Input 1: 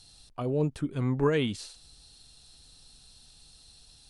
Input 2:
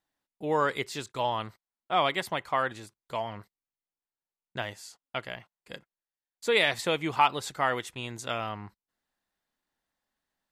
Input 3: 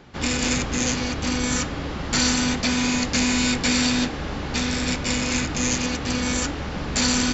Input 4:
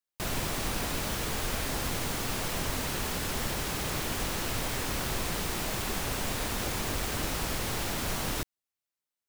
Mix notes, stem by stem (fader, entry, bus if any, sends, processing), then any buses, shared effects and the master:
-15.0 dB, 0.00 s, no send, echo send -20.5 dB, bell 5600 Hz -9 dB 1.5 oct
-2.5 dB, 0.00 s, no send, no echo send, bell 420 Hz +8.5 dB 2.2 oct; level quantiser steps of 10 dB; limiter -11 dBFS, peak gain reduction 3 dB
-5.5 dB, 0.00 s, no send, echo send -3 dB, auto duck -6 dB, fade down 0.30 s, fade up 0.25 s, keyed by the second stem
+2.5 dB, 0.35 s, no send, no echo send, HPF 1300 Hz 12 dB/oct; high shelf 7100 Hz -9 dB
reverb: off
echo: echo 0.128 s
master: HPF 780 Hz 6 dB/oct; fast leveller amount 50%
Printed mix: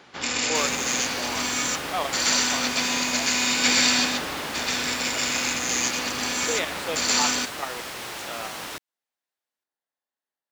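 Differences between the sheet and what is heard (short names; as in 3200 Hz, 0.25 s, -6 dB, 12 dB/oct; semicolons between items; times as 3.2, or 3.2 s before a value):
stem 3 -5.5 dB -> +2.5 dB; stem 4: missing HPF 1300 Hz 12 dB/oct; master: missing fast leveller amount 50%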